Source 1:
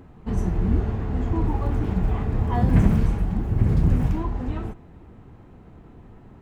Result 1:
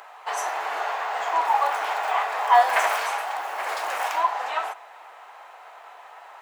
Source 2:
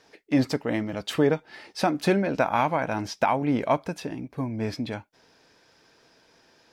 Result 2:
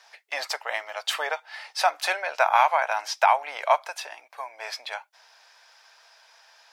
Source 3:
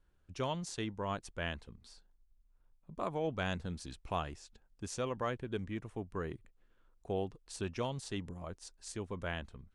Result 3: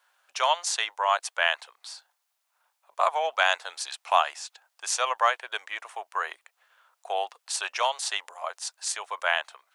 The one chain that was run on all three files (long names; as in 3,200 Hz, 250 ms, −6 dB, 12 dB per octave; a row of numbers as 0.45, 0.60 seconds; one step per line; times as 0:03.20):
Butterworth high-pass 680 Hz 36 dB per octave
normalise the peak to −6 dBFS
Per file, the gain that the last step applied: +15.5, +5.5, +17.0 decibels